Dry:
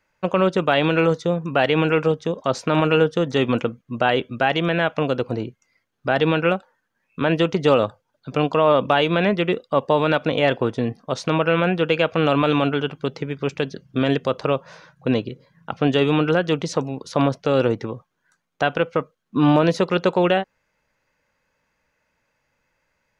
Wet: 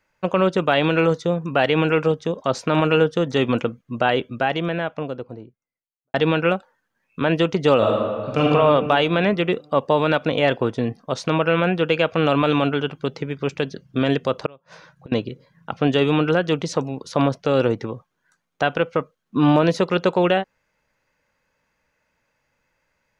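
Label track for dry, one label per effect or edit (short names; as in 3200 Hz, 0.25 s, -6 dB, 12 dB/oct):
3.930000	6.140000	studio fade out
7.770000	8.460000	reverb throw, RT60 1.9 s, DRR -3.5 dB
14.460000	15.120000	flipped gate shuts at -25 dBFS, range -25 dB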